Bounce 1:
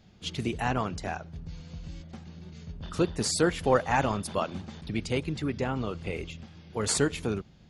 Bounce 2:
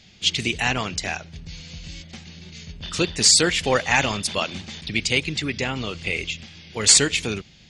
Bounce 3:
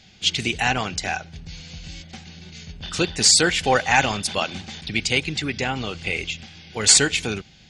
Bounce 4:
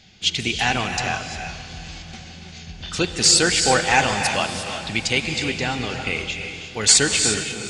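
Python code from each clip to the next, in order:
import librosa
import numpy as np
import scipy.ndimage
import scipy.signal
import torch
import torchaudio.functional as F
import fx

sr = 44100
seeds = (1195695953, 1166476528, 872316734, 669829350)

y1 = fx.band_shelf(x, sr, hz=4000.0, db=14.0, octaves=2.5)
y1 = F.gain(torch.from_numpy(y1), 2.0).numpy()
y2 = fx.small_body(y1, sr, hz=(780.0, 1500.0), ring_ms=45, db=9)
y3 = fx.echo_diffused(y2, sr, ms=452, feedback_pct=52, wet_db=-15.5)
y3 = fx.rev_gated(y3, sr, seeds[0], gate_ms=380, shape='rising', drr_db=5.5)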